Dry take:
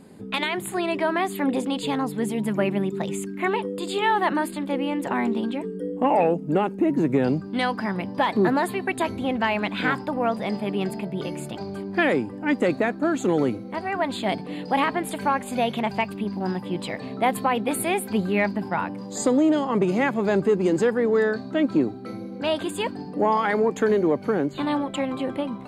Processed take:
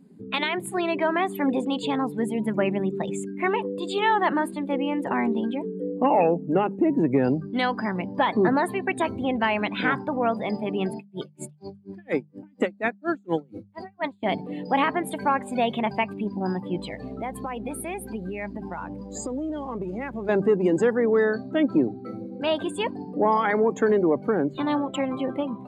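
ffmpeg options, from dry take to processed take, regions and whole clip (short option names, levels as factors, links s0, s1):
-filter_complex "[0:a]asettb=1/sr,asplit=3[s0][s1][s2];[s0]atrim=end=10.964[s3];[s1]atrim=start=10.96:end=14.23,asetpts=PTS-STARTPTS,afade=t=in:d=0.004:c=qsin,afade=t=out:st=3.266:d=0.004:c=qsin,highshelf=f=2300:g=7.5,aeval=exprs='val(0)*pow(10,-38*(0.5-0.5*cos(2*PI*4.2*n/s))/20)':c=same[s4];[s2]atrim=start=14.226[s5];[s3][s4]acrossfade=d=0.004:c1=hsin:c2=qsin[s6];[s6][s5]acrossfade=d=0.004:c1=qsin:c2=hsin,asettb=1/sr,asplit=3[s7][s8][s9];[s7]atrim=end=16.784[s10];[s8]atrim=start=16.78:end=20.29,asetpts=PTS-STARTPTS,afade=t=in:d=0.004:c=qsin,afade=t=out:st=3.506:d=0.004:c=qsin,acompressor=threshold=0.0398:ratio=4:attack=3.2:release=140:knee=1:detection=peak,aeval=exprs='sgn(val(0))*max(abs(val(0))-0.00335,0)':c=same,aeval=exprs='val(0)+0.00562*(sin(2*PI*60*n/s)+sin(2*PI*2*60*n/s)/2+sin(2*PI*3*60*n/s)/3+sin(2*PI*4*60*n/s)/4+sin(2*PI*5*60*n/s)/5)':c=same[s11];[s9]atrim=start=20.286[s12];[s10][s11]acrossfade=d=0.004:c1=hsin:c2=qsin[s13];[s13][s12]acrossfade=d=0.004:c1=qsin:c2=hsin,afftdn=nr=16:nf=-37,bandreject=f=50:t=h:w=6,bandreject=f=100:t=h:w=6,bandreject=f=150:t=h:w=6,bandreject=f=200:t=h:w=6"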